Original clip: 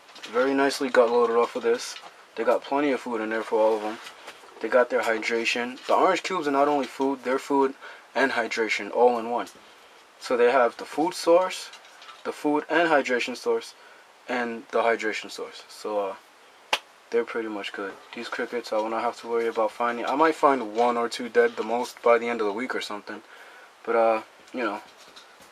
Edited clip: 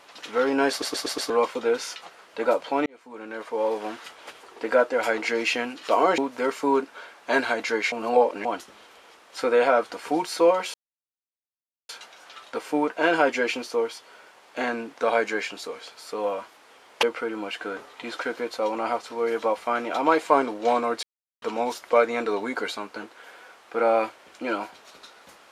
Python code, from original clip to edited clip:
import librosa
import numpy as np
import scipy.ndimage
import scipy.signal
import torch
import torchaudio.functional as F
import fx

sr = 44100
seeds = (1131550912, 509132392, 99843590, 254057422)

y = fx.edit(x, sr, fx.stutter_over(start_s=0.7, slice_s=0.12, count=5),
    fx.fade_in_span(start_s=2.86, length_s=1.79, curve='qsin'),
    fx.cut(start_s=6.18, length_s=0.87),
    fx.reverse_span(start_s=8.79, length_s=0.53),
    fx.insert_silence(at_s=11.61, length_s=1.15),
    fx.cut(start_s=16.75, length_s=0.41),
    fx.silence(start_s=21.16, length_s=0.39), tone=tone)